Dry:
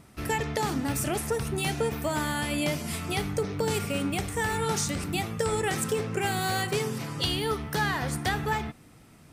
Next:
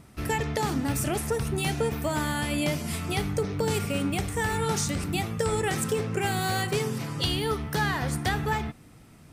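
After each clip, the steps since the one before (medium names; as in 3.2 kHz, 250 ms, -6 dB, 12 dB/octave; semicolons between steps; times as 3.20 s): bass shelf 190 Hz +4 dB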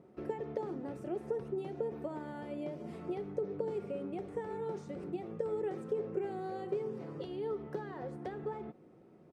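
comb 5.5 ms, depth 37%; compression, threshold -31 dBFS, peak gain reduction 9.5 dB; band-pass filter 430 Hz, Q 2.4; trim +3 dB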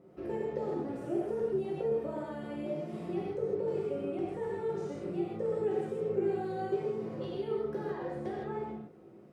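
gated-style reverb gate 190 ms flat, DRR -5 dB; trim -2.5 dB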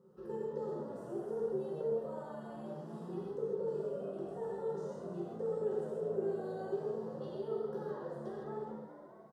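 static phaser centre 450 Hz, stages 8; on a send: frequency-shifting echo 208 ms, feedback 62%, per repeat +79 Hz, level -11.5 dB; on the sum: trim -3.5 dB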